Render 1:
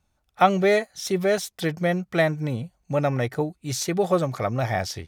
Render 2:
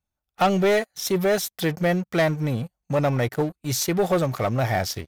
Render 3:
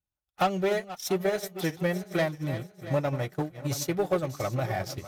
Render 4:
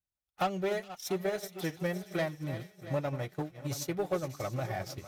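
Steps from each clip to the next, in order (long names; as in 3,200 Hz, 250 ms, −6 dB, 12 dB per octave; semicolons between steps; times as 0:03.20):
parametric band 13,000 Hz +10 dB 0.25 octaves; leveller curve on the samples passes 3; level −8.5 dB
feedback delay that plays each chunk backwards 340 ms, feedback 60%, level −10.5 dB; transient designer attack +5 dB, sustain −8 dB; notch comb filter 230 Hz; level −7 dB
delay with a high-pass on its return 417 ms, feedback 40%, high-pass 2,700 Hz, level −14 dB; level −5.5 dB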